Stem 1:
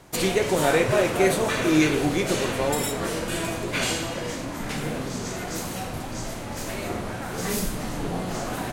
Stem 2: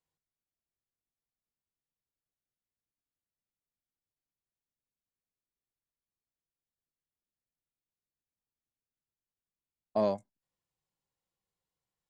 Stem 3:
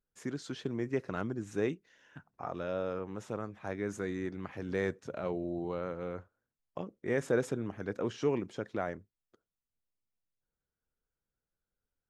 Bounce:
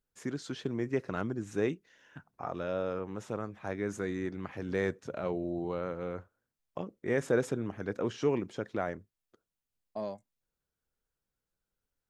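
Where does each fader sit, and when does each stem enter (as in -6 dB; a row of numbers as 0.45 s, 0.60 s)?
mute, -9.0 dB, +1.5 dB; mute, 0.00 s, 0.00 s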